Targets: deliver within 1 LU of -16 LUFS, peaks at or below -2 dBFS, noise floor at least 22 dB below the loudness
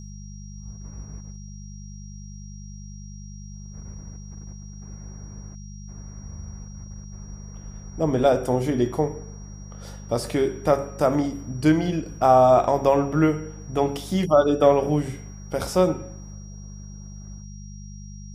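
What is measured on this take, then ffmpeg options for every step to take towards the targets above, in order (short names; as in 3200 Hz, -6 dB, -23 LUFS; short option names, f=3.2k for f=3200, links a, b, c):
hum 50 Hz; harmonics up to 200 Hz; hum level -36 dBFS; steady tone 5700 Hz; tone level -49 dBFS; loudness -22.0 LUFS; peak -3.5 dBFS; loudness target -16.0 LUFS
-> -af "bandreject=f=50:t=h:w=4,bandreject=f=100:t=h:w=4,bandreject=f=150:t=h:w=4,bandreject=f=200:t=h:w=4"
-af "bandreject=f=5.7k:w=30"
-af "volume=6dB,alimiter=limit=-2dB:level=0:latency=1"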